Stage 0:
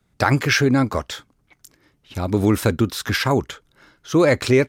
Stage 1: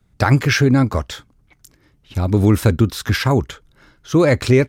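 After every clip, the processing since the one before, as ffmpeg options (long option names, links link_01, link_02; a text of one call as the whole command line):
ffmpeg -i in.wav -af "lowshelf=frequency=140:gain=11.5" out.wav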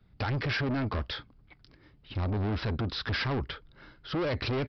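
ffmpeg -i in.wav -af "alimiter=limit=-9.5dB:level=0:latency=1:release=113,aresample=11025,asoftclip=type=tanh:threshold=-25dB,aresample=44100,volume=-2.5dB" out.wav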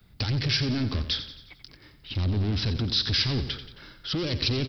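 ffmpeg -i in.wav -filter_complex "[0:a]acrossover=split=370|3000[link_01][link_02][link_03];[link_02]acompressor=threshold=-58dB:ratio=2[link_04];[link_01][link_04][link_03]amix=inputs=3:normalize=0,crystalizer=i=4:c=0,asplit=2[link_05][link_06];[link_06]aecho=0:1:89|178|267|356|445:0.266|0.136|0.0692|0.0353|0.018[link_07];[link_05][link_07]amix=inputs=2:normalize=0,volume=4dB" out.wav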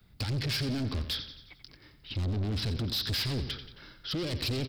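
ffmpeg -i in.wav -af "volume=24.5dB,asoftclip=hard,volume=-24.5dB,volume=-3.5dB" out.wav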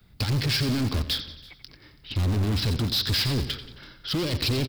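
ffmpeg -i in.wav -filter_complex "[0:a]asplit=2[link_01][link_02];[link_02]acrusher=bits=4:mix=0:aa=0.000001,volume=-12dB[link_03];[link_01][link_03]amix=inputs=2:normalize=0,aecho=1:1:330:0.0668,volume=4dB" out.wav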